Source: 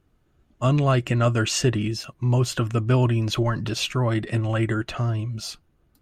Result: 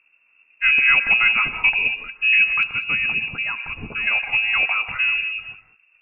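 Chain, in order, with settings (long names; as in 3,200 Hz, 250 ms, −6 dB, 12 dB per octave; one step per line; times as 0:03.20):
voice inversion scrambler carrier 2,700 Hz
parametric band 91 Hz −8 dB 1.5 octaves, from 0:02.63 2,000 Hz, from 0:04.07 220 Hz
reverb whose tail is shaped and stops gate 220 ms rising, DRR 9.5 dB
level +2.5 dB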